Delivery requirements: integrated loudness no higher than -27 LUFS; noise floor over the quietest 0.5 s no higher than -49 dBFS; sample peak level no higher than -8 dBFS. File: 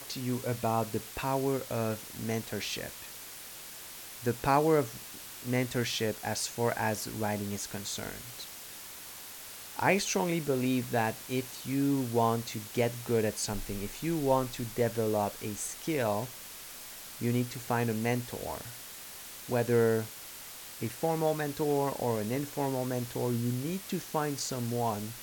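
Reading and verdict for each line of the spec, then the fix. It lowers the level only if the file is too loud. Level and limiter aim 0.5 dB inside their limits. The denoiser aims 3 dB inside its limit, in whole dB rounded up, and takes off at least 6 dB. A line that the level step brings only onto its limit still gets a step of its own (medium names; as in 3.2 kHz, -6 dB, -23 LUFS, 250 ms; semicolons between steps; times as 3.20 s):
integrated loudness -32.0 LUFS: pass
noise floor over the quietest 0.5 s -46 dBFS: fail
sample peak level -12.5 dBFS: pass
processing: noise reduction 6 dB, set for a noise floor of -46 dBFS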